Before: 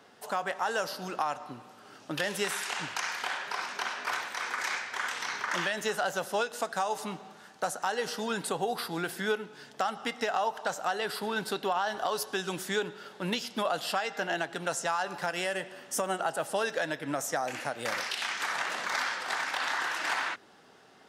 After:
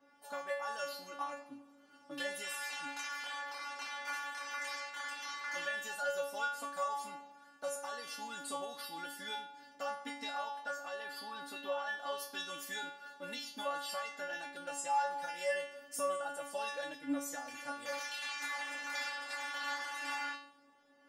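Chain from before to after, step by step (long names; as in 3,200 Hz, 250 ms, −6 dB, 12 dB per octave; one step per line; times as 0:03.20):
0:10.41–0:12.28: bass and treble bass −2 dB, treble −4 dB
stiff-string resonator 280 Hz, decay 0.62 s, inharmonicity 0.002
one half of a high-frequency compander decoder only
level +10 dB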